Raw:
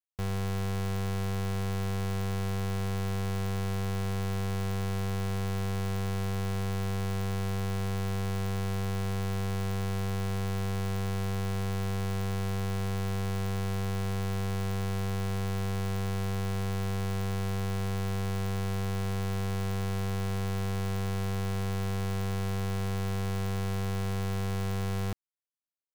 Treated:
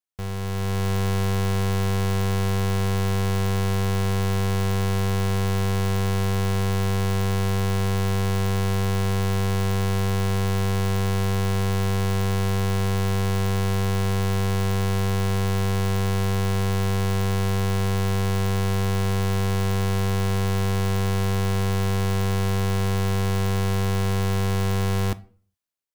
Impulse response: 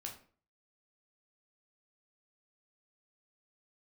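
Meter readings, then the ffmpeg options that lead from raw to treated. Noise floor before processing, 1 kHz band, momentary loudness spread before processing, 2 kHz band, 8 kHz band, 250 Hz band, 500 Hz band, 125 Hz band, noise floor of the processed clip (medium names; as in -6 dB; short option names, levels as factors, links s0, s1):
-31 dBFS, +9.0 dB, 0 LU, +9.0 dB, +9.5 dB, +7.5 dB, +9.0 dB, +8.5 dB, -27 dBFS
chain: -filter_complex "[0:a]dynaudnorm=f=180:g=7:m=2.37,asplit=2[s0][s1];[1:a]atrim=start_sample=2205[s2];[s1][s2]afir=irnorm=-1:irlink=0,volume=0.422[s3];[s0][s3]amix=inputs=2:normalize=0"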